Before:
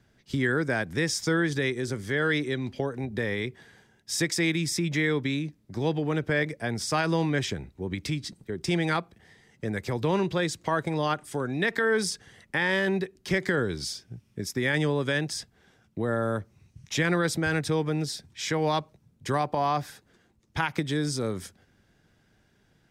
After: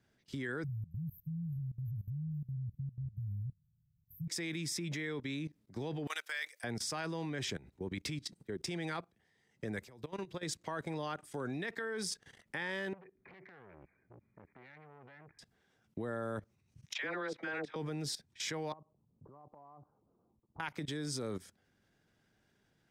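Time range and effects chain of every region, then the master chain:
0.64–4.28 brick-wall FIR band-stop 180–12000 Hz + low shelf 160 Hz +11 dB
6.07–6.64 HPF 1000 Hz + tilt +4.5 dB/oct
9.8–10.43 high shelf 8100 Hz +5.5 dB + compressor 5:1, threshold -33 dBFS
12.93–15.39 brick-wall FIR low-pass 2500 Hz + compressor 5:1, threshold -37 dBFS + core saturation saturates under 1400 Hz
16.93–17.76 BPF 370–3000 Hz + dispersion lows, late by 62 ms, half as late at 840 Hz
18.72–20.6 steep low-pass 1200 Hz 72 dB/oct + compressor 4:1, threshold -37 dBFS
whole clip: low shelf 90 Hz -7.5 dB; level quantiser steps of 18 dB; gain -2.5 dB

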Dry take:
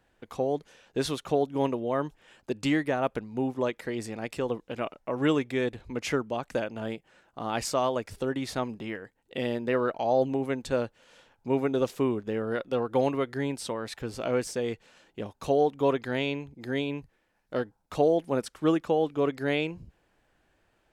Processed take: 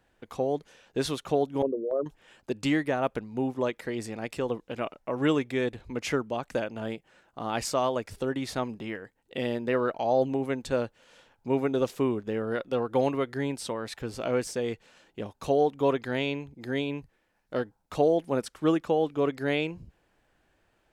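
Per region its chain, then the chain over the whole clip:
1.62–2.06 formant sharpening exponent 3 + notches 50/100/150/200/250/300 Hz + gate with hold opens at -21 dBFS, closes at -32 dBFS
whole clip: dry

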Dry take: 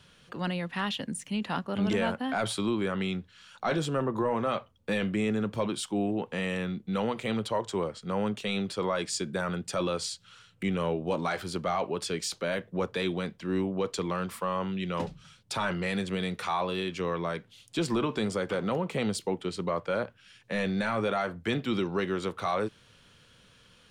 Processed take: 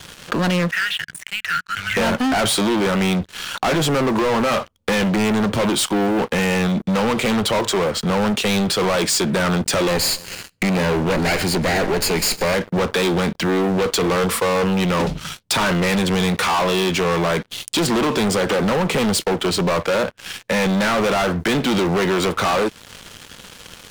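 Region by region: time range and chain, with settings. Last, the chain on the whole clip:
0.71–1.97 Chebyshev band-stop 150–1400 Hz, order 5 + three-band isolator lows -14 dB, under 330 Hz, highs -19 dB, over 2300 Hz
9.88–12.54 minimum comb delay 0.42 ms + feedback echo 0.139 s, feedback 48%, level -24 dB
14.01–14.86 bell 470 Hz +12.5 dB 0.24 oct + mismatched tape noise reduction decoder only
whole clip: bell 120 Hz -8 dB 0.4 oct; sample leveller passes 5; compressor 2:1, threshold -31 dBFS; gain +8.5 dB

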